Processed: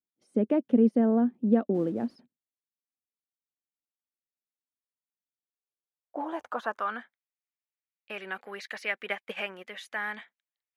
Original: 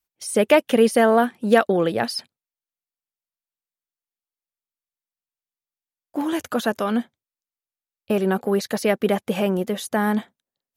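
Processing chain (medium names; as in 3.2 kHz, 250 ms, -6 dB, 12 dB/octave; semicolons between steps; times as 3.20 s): 1.74–2.16 s: modulation noise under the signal 11 dB; 9.06–9.68 s: transient shaper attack +8 dB, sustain -8 dB; band-pass sweep 250 Hz -> 2.1 kHz, 5.19–7.29 s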